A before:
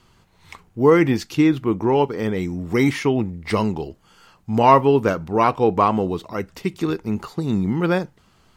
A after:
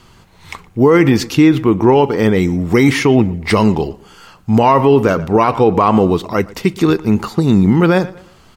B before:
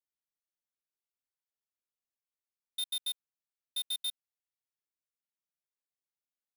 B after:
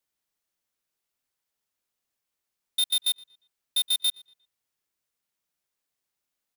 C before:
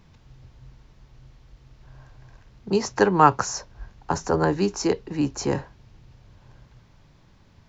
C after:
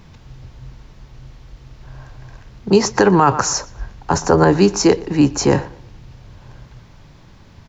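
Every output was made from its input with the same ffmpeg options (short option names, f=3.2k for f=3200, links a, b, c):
-filter_complex "[0:a]asplit=2[a][b];[b]adelay=118,lowpass=f=4.9k:p=1,volume=-21.5dB,asplit=2[c][d];[d]adelay=118,lowpass=f=4.9k:p=1,volume=0.36,asplit=2[e][f];[f]adelay=118,lowpass=f=4.9k:p=1,volume=0.36[g];[c][e][g]amix=inputs=3:normalize=0[h];[a][h]amix=inputs=2:normalize=0,alimiter=level_in=11.5dB:limit=-1dB:release=50:level=0:latency=1,volume=-1dB"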